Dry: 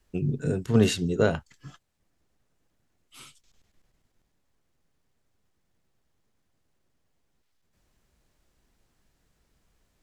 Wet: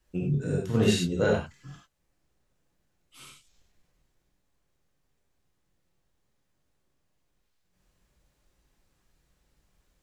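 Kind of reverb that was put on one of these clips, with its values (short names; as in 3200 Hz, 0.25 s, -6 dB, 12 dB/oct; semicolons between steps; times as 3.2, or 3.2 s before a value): non-linear reverb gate 0.12 s flat, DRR -2.5 dB; gain -5 dB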